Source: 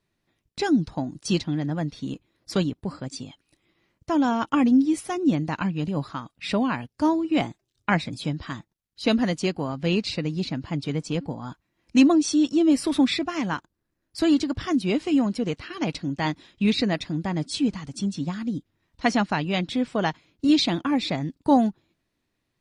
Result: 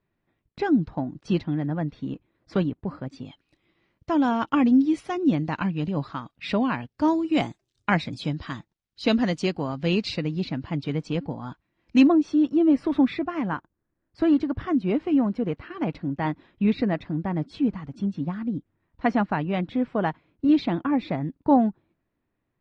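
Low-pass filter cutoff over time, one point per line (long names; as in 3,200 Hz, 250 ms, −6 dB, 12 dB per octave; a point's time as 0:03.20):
2,100 Hz
from 0:03.25 3,900 Hz
from 0:07.08 9,000 Hz
from 0:07.90 5,400 Hz
from 0:10.22 3,500 Hz
from 0:12.07 1,700 Hz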